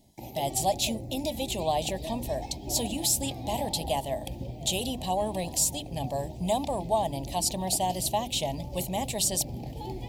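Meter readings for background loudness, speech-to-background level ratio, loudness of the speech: -39.5 LUFS, 10.0 dB, -29.5 LUFS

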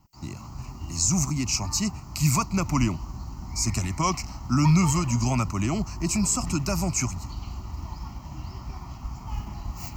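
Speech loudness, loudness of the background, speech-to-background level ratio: -25.0 LUFS, -37.0 LUFS, 12.0 dB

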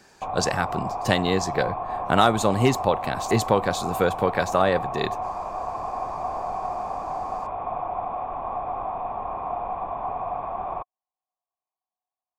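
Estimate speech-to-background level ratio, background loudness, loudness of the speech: 6.5 dB, -30.5 LUFS, -24.0 LUFS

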